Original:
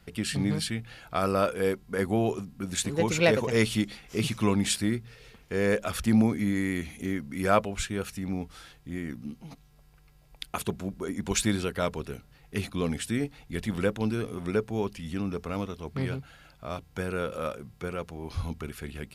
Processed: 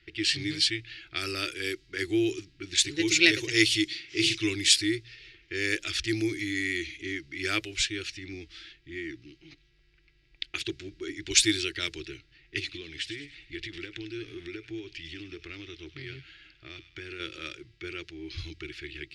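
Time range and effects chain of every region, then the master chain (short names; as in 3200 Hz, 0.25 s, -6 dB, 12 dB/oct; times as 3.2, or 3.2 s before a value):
3.87–4.35 HPF 72 Hz 24 dB/oct + flutter echo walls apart 6.7 m, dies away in 0.33 s
12.59–17.2 compressor 12:1, threshold -31 dBFS + thin delay 0.101 s, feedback 45%, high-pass 1700 Hz, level -10.5 dB
whole clip: low shelf 480 Hz -4 dB; low-pass opened by the level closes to 2300 Hz, open at -23 dBFS; EQ curve 130 Hz 0 dB, 230 Hz -24 dB, 330 Hz +14 dB, 480 Hz -14 dB, 1000 Hz -18 dB, 1900 Hz +9 dB, 4900 Hz +15 dB, 14000 Hz -1 dB; gain -3 dB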